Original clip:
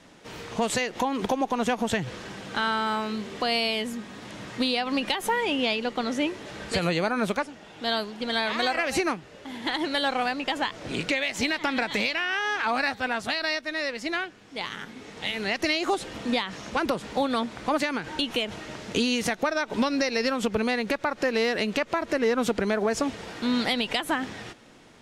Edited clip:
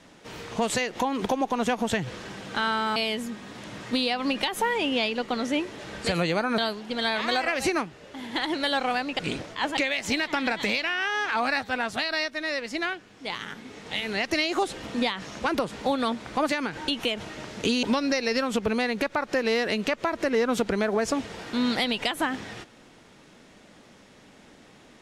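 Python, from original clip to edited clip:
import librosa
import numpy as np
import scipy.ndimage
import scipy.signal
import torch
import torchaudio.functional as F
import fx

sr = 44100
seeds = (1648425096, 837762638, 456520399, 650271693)

y = fx.edit(x, sr, fx.cut(start_s=2.96, length_s=0.67),
    fx.cut(start_s=7.25, length_s=0.64),
    fx.reverse_span(start_s=10.5, length_s=0.58),
    fx.cut(start_s=19.14, length_s=0.58), tone=tone)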